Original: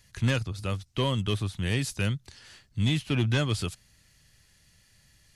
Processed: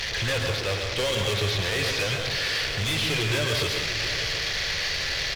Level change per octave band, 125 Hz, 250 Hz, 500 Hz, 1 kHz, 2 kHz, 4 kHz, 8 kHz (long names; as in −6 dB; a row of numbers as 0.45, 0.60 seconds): −2.0, −4.5, +7.0, +5.5, +11.0, +11.5, +9.5 decibels